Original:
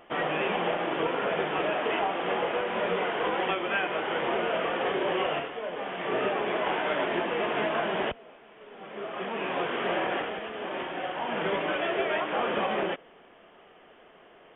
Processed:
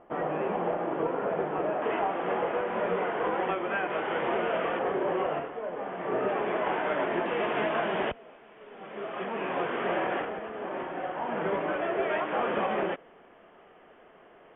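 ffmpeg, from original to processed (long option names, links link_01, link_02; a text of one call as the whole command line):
ffmpeg -i in.wav -af "asetnsamples=nb_out_samples=441:pad=0,asendcmd='1.82 lowpass f 1700;3.9 lowpass f 2300;4.79 lowpass f 1400;6.29 lowpass f 2000;7.26 lowpass f 2900;9.24 lowpass f 2200;10.25 lowpass f 1600;12.03 lowpass f 2200',lowpass=1100" out.wav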